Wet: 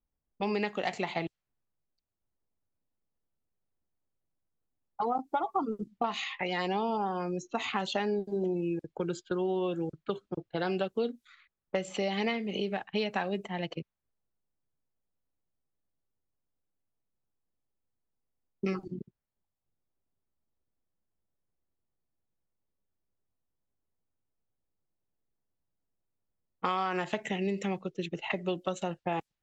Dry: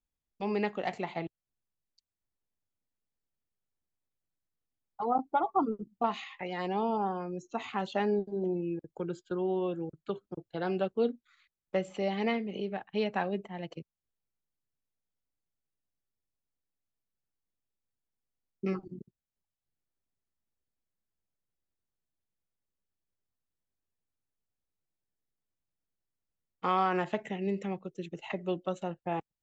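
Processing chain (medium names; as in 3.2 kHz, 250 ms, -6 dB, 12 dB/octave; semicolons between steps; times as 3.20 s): level-controlled noise filter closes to 900 Hz, open at -30.5 dBFS; treble shelf 2.4 kHz +10 dB; compression 4:1, threshold -33 dBFS, peak gain reduction 10 dB; trim +5 dB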